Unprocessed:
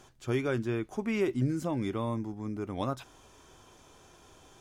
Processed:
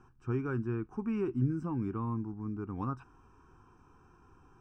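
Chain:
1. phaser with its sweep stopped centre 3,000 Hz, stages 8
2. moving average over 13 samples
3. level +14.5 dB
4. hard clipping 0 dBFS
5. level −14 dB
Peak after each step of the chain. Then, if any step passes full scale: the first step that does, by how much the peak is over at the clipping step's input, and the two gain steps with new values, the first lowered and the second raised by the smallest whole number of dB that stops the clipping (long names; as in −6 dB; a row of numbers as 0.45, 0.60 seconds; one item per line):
−20.5, −20.5, −6.0, −6.0, −20.0 dBFS
no step passes full scale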